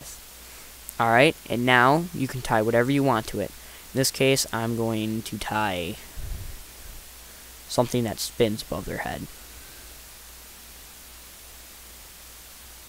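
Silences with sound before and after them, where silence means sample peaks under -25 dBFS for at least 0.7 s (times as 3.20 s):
6.35–7.72 s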